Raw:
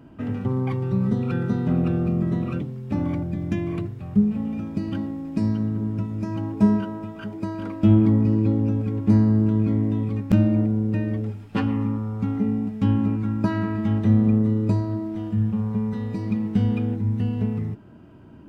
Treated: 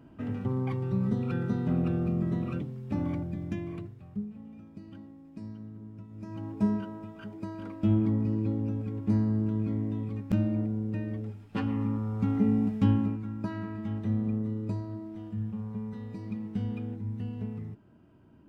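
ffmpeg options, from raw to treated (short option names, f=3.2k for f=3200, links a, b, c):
-af "volume=12.5dB,afade=t=out:st=3.1:d=1.19:silence=0.223872,afade=t=in:st=6.07:d=0.43:silence=0.316228,afade=t=in:st=11.47:d=1.22:silence=0.375837,afade=t=out:st=12.69:d=0.52:silence=0.281838"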